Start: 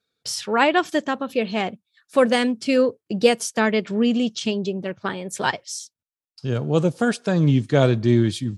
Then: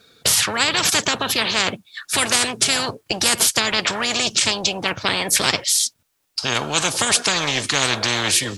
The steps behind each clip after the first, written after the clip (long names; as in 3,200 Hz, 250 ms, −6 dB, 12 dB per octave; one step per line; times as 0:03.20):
every bin compressed towards the loudest bin 10 to 1
level +2.5 dB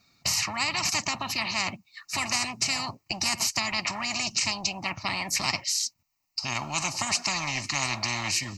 phaser with its sweep stopped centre 2,300 Hz, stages 8
level −5.5 dB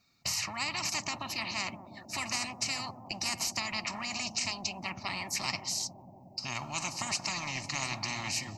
bucket-brigade delay 181 ms, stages 1,024, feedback 85%, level −9 dB
level −6.5 dB